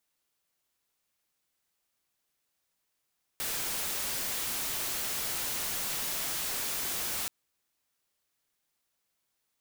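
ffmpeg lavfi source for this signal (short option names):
-f lavfi -i "anoisesrc=c=white:a=0.0366:d=3.88:r=44100:seed=1"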